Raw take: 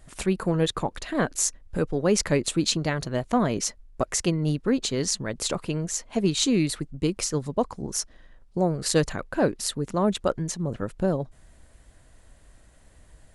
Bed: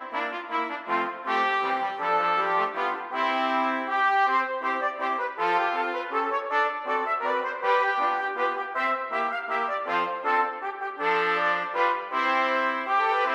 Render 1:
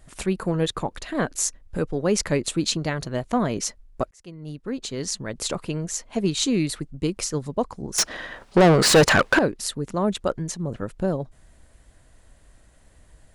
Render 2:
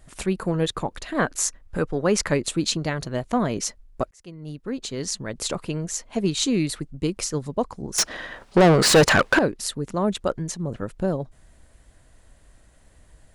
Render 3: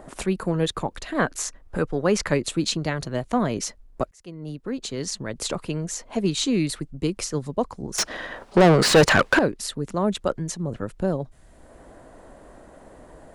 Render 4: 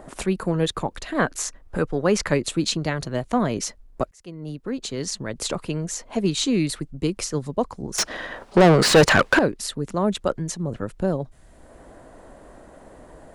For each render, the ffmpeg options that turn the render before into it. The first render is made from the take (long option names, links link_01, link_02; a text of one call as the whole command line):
ffmpeg -i in.wav -filter_complex "[0:a]asettb=1/sr,asplit=3[link_01][link_02][link_03];[link_01]atrim=end=7.984[link_04];[link_02]atrim=start=7.98:end=9.39,asetpts=PTS-STARTPTS,afade=type=in:duration=0.004:curve=qsin,afade=type=out:start_time=1.406:duration=0.004:curve=qsin,asplit=2[link_05][link_06];[link_06]highpass=frequency=720:poles=1,volume=33dB,asoftclip=type=tanh:threshold=-6dB[link_07];[link_05][link_07]amix=inputs=2:normalize=0,lowpass=frequency=3500:poles=1,volume=-6dB[link_08];[link_03]atrim=start=9.386[link_09];[link_04][link_08]acrossfade=duration=0.004:curve1=hsin:curve2=qsin[link_10];[link_10][link_09]acrossfade=duration=0.004:curve1=qsin:curve2=hsin,asplit=2[link_11][link_12];[link_11]atrim=end=4.11,asetpts=PTS-STARTPTS,afade=type=out:start_time=4.106:duration=0.004:curve=hsin[link_13];[link_12]atrim=start=4.11,asetpts=PTS-STARTPTS,afade=type=in:duration=1.31[link_14];[link_13][link_14]concat=n=2:v=0:a=1" out.wav
ffmpeg -i in.wav -filter_complex "[0:a]asettb=1/sr,asplit=3[link_01][link_02][link_03];[link_01]atrim=end=1.164[link_04];[link_02]atrim=start=1.16:end=2.34,asetpts=PTS-STARTPTS,afade=type=in:duration=0.004:curve=qsin,afade=type=out:start_time=1.176:duration=0.004:curve=qsin,equalizer=frequency=1300:width_type=o:width=1.6:gain=5.5[link_05];[link_03]atrim=start=2.336[link_06];[link_04][link_05]acrossfade=duration=0.004:curve1=hsin:curve2=qsin[link_07];[link_07][link_06]acrossfade=duration=0.004:curve1=qsin:curve2=hsin" out.wav
ffmpeg -i in.wav -filter_complex "[0:a]acrossover=split=220|1200|4900[link_01][link_02][link_03][link_04];[link_02]acompressor=mode=upward:threshold=-32dB:ratio=2.5[link_05];[link_04]alimiter=limit=-20.5dB:level=0:latency=1:release=102[link_06];[link_01][link_05][link_03][link_06]amix=inputs=4:normalize=0" out.wav
ffmpeg -i in.wav -af "volume=1dB" out.wav